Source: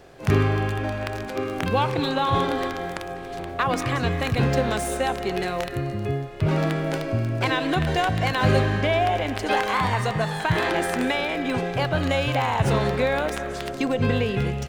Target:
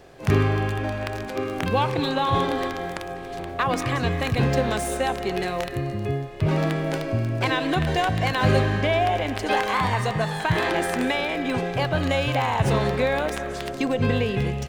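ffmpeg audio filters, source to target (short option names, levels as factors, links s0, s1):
-af "bandreject=f=1400:w=20"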